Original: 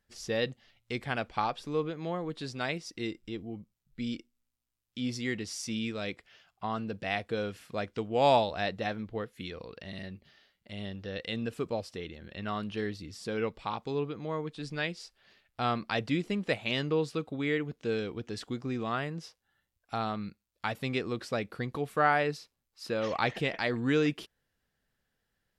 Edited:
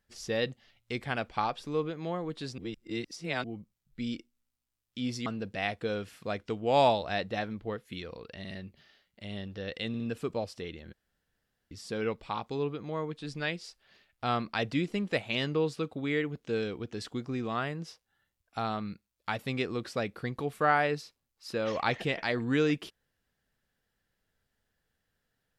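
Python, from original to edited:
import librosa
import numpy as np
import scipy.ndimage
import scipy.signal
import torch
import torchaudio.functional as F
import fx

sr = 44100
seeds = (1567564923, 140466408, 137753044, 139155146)

y = fx.edit(x, sr, fx.reverse_span(start_s=2.58, length_s=0.86),
    fx.cut(start_s=5.26, length_s=1.48),
    fx.stutter(start_s=11.36, slice_s=0.06, count=3),
    fx.room_tone_fill(start_s=12.29, length_s=0.78), tone=tone)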